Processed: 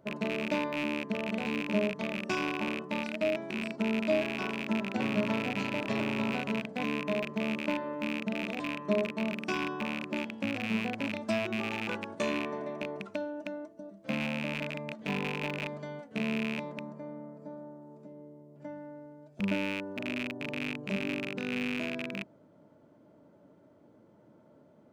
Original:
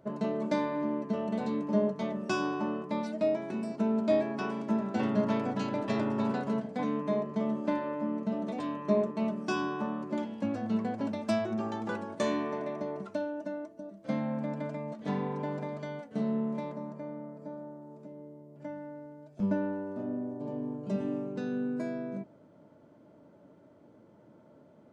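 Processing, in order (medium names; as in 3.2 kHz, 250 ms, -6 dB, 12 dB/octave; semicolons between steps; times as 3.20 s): rattle on loud lows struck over -38 dBFS, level -21 dBFS; trim -2 dB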